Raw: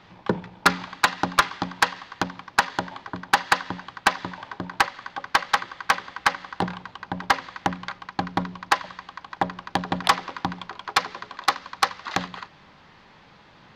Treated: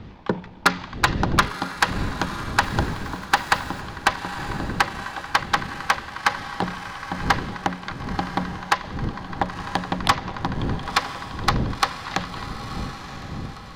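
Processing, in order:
wind on the microphone 200 Hz −32 dBFS
0:02.63–0:03.81: centre clipping without the shift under −39 dBFS
feedback delay with all-pass diffusion 999 ms, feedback 45%, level −10.5 dB

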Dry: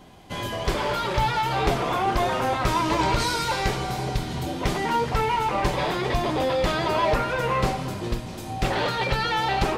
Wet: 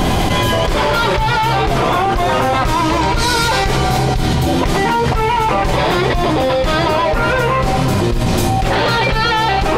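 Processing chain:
low-shelf EQ 61 Hz +9 dB
envelope flattener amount 100%

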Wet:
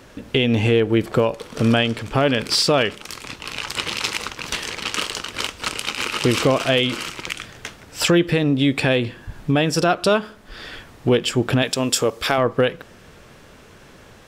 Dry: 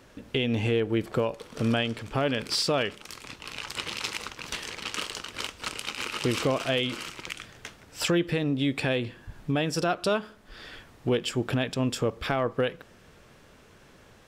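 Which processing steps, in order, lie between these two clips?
0:11.62–0:12.38: bass and treble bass −9 dB, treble +9 dB
level +8.5 dB

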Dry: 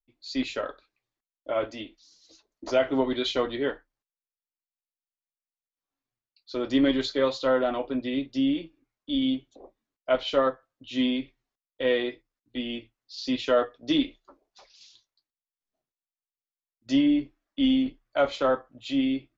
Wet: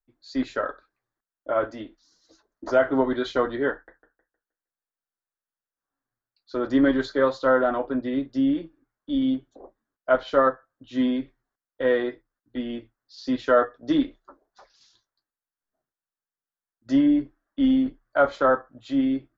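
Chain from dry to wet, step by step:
high shelf with overshoot 2,000 Hz −7 dB, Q 3
0:03.72–0:06.67: feedback echo with a swinging delay time 156 ms, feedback 32%, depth 151 cents, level −11 dB
level +2.5 dB

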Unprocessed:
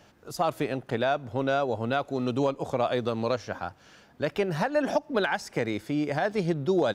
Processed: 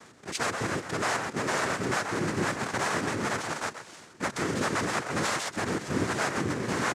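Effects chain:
each half-wave held at its own peak
low-shelf EQ 140 Hz −11 dB
far-end echo of a speakerphone 130 ms, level −12 dB
gain into a clipping stage and back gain 29.5 dB
cochlear-implant simulation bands 3
level +2.5 dB

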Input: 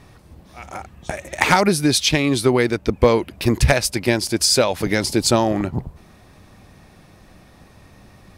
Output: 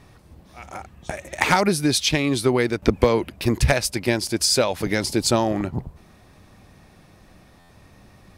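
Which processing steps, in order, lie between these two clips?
buffer that repeats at 0:07.59, times 8
0:02.82–0:03.30: multiband upward and downward compressor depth 100%
level −3 dB

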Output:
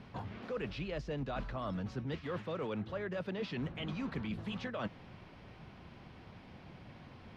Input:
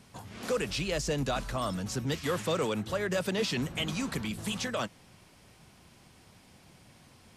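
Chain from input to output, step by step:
reversed playback
downward compressor 6 to 1, threshold −41 dBFS, peak gain reduction 14.5 dB
reversed playback
high-frequency loss of the air 310 metres
level +5.5 dB

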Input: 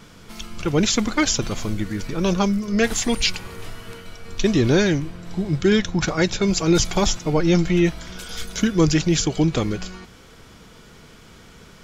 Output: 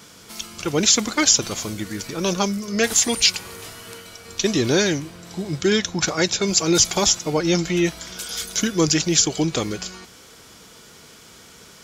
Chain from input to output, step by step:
high-pass filter 57 Hz
bass and treble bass −6 dB, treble +9 dB

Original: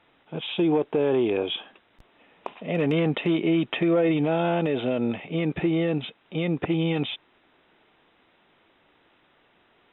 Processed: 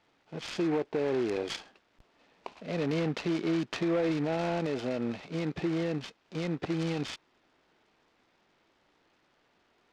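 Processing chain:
short delay modulated by noise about 1,300 Hz, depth 0.049 ms
level −7 dB

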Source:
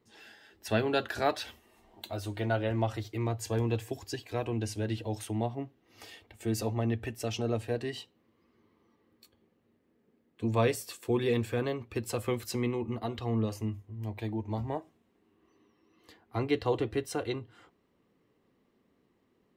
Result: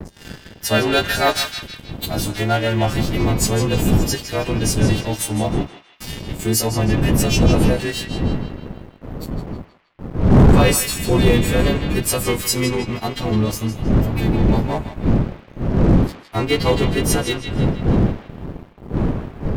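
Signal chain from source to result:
every partial snapped to a pitch grid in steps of 2 semitones
wind on the microphone 210 Hz −29 dBFS
noise gate with hold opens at −37 dBFS
leveller curve on the samples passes 3
pitch vibrato 2 Hz 49 cents
on a send: feedback echo with a band-pass in the loop 159 ms, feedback 54%, band-pass 2,700 Hz, level −6.5 dB

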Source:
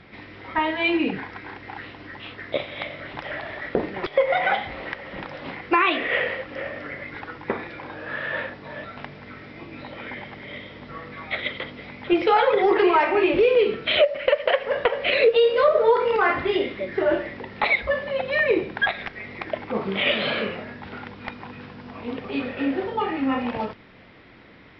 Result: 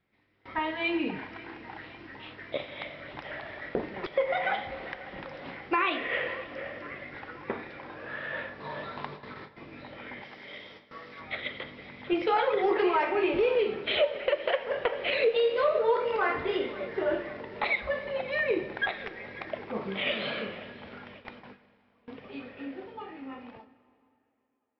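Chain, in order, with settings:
fade-out on the ending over 5.22 s
0:10.22–0:11.21: bass and treble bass −9 dB, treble +10 dB
tape delay 542 ms, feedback 76%, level −19 dB, low-pass 4,500 Hz
noise gate with hold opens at −30 dBFS
0:08.60–0:09.49: graphic EQ with 15 bands 160 Hz +6 dB, 400 Hz +7 dB, 1,000 Hz +12 dB, 4,000 Hz +9 dB
dense smooth reverb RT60 2.5 s, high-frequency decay 0.85×, DRR 14 dB
level −7.5 dB

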